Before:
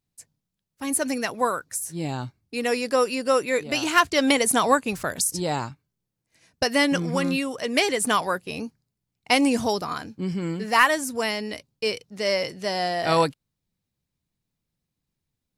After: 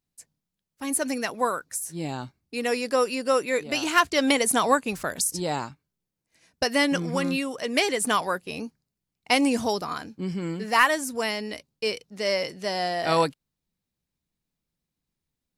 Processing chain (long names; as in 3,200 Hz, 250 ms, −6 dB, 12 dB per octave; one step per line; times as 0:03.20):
parametric band 110 Hz −7.5 dB 0.55 octaves
level −1.5 dB